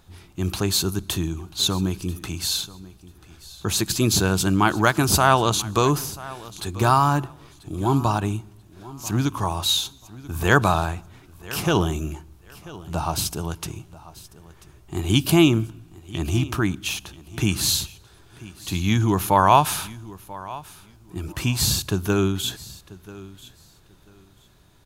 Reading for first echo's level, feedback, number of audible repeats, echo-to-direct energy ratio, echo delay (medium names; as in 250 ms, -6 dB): -19.0 dB, 20%, 2, -19.0 dB, 988 ms